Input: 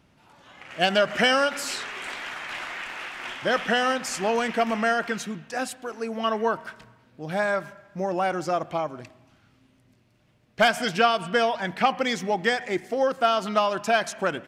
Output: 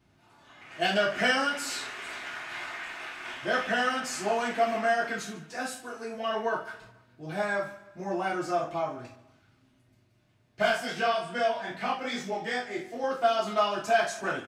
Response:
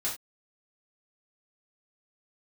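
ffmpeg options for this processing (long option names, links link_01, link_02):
-filter_complex "[1:a]atrim=start_sample=2205[link_01];[0:a][link_01]afir=irnorm=-1:irlink=0,asettb=1/sr,asplit=3[link_02][link_03][link_04];[link_02]atrim=end=10.624[link_05];[link_03]atrim=start=10.62:end=13.04,asetpts=PTS-STARTPTS,afade=type=in:duration=0.004:curve=qsin,afade=type=out:start_time=2.416:duration=0.004:curve=qsin,flanger=delay=20:depth=4.2:speed=2.5[link_06];[link_04]atrim=start=13.036[link_07];[link_05][link_06]acrossfade=duration=0.004:curve1=hsin:curve2=qsin[link_08];[link_08][link_07]acrossfade=duration=0.004:curve1=qsin:curve2=hsin,aecho=1:1:143|286|429:0.112|0.0449|0.018,volume=-8.5dB"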